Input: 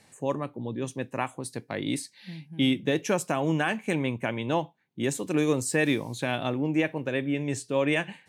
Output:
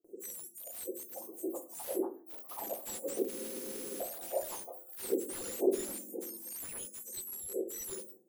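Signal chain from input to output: spectrum mirrored in octaves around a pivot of 1800 Hz; HPF 170 Hz; de-esser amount 50%; elliptic band-stop 510–7900 Hz, stop band 40 dB; gate with hold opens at -51 dBFS; echoes that change speed 0.578 s, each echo +7 st, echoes 2, each echo -6 dB; shoebox room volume 250 m³, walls furnished, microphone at 0.83 m; spectral freeze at 3.31, 0.70 s; slew limiter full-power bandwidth 120 Hz; gain -2 dB

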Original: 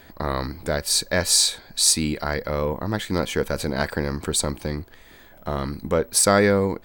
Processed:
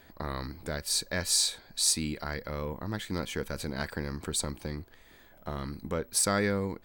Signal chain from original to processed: dynamic EQ 610 Hz, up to -5 dB, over -31 dBFS, Q 0.85; gain -8 dB

